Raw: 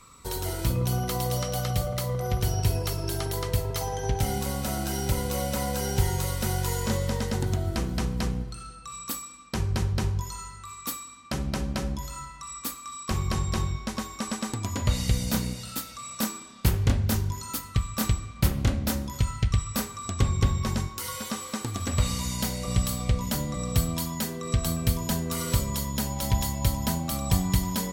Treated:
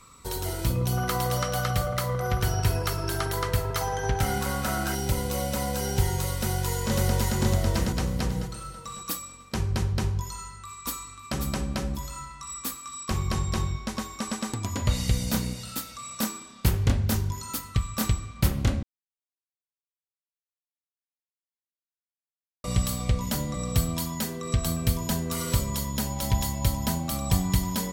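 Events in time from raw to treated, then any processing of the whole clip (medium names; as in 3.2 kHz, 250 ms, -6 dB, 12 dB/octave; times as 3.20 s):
0.97–4.95 s: peaking EQ 1.4 kHz +10 dB 1.1 oct
6.36–7.37 s: echo throw 550 ms, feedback 35%, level -0.5 dB
8.34–9.19 s: comb 6.2 ms
10.31–11.24 s: echo throw 540 ms, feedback 25%, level -5 dB
12.29–13.05 s: doubling 15 ms -7 dB
18.83–22.64 s: mute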